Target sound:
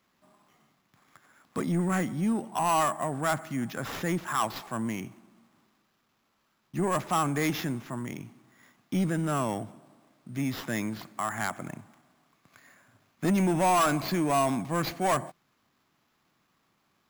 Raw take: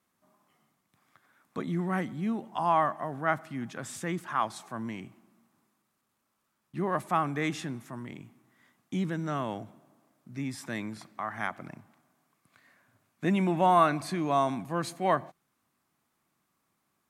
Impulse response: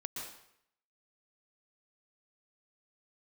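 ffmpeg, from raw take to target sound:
-af "acrusher=samples=5:mix=1:aa=0.000001,asoftclip=type=tanh:threshold=-25.5dB,volume=5.5dB"

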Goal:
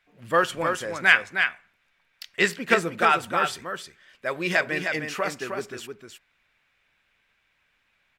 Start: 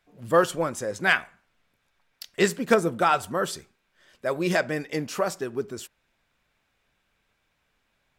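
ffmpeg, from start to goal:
ffmpeg -i in.wav -filter_complex "[0:a]equalizer=frequency=2200:width_type=o:width=1.8:gain=11.5,asplit=2[link_01][link_02];[link_02]aecho=0:1:311:0.501[link_03];[link_01][link_03]amix=inputs=2:normalize=0,volume=-5dB" out.wav

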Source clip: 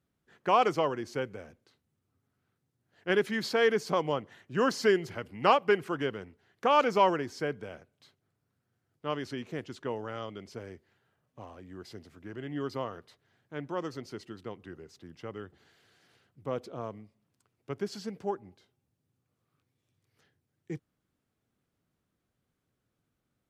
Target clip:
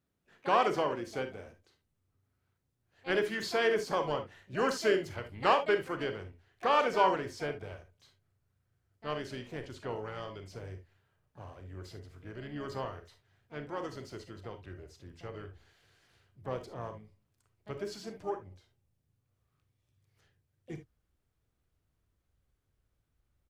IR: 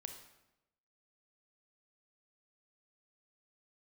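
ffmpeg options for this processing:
-filter_complex "[0:a]asubboost=boost=10.5:cutoff=58,asplit=3[link_01][link_02][link_03];[link_02]asetrate=35002,aresample=44100,atempo=1.25992,volume=-17dB[link_04];[link_03]asetrate=66075,aresample=44100,atempo=0.66742,volume=-12dB[link_05];[link_01][link_04][link_05]amix=inputs=3:normalize=0[link_06];[1:a]atrim=start_sample=2205,atrim=end_sample=3528[link_07];[link_06][link_07]afir=irnorm=-1:irlink=0,volume=2dB"

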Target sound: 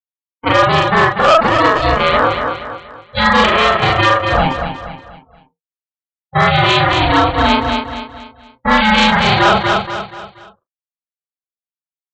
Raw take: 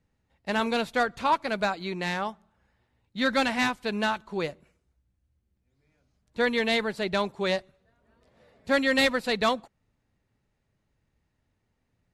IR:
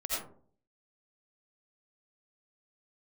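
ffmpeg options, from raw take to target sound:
-af "afftfilt=real='re':imag='-im':win_size=4096:overlap=0.75,bandreject=frequency=50:width_type=h:width=6,bandreject=frequency=100:width_type=h:width=6,bandreject=frequency=150:width_type=h:width=6,bandreject=frequency=200:width_type=h:width=6,bandreject=frequency=250:width_type=h:width=6,afftdn=noise_reduction=34:noise_floor=-43,agate=range=-33dB:threshold=-46dB:ratio=3:detection=peak,acontrast=51,highpass=frequency=160:width=0.5412,highpass=frequency=160:width=1.3066,equalizer=frequency=160:width_type=q:width=4:gain=-4,equalizer=frequency=250:width_type=q:width=4:gain=-9,equalizer=frequency=920:width_type=q:width=4:gain=9,equalizer=frequency=1400:width_type=q:width=4:gain=5,equalizer=frequency=2100:width_type=q:width=4:gain=-8,equalizer=frequency=3000:width_type=q:width=4:gain=9,lowpass=frequency=3800:width=0.5412,lowpass=frequency=3800:width=1.3066,aresample=16000,asoftclip=type=hard:threshold=-16.5dB,aresample=44100,aecho=1:1:238|476|714|952:0.316|0.123|0.0481|0.0188,aeval=exprs='val(0)*sin(2*PI*320*n/s)':channel_layout=same,alimiter=level_in=21dB:limit=-1dB:release=50:level=0:latency=1,volume=-1dB"

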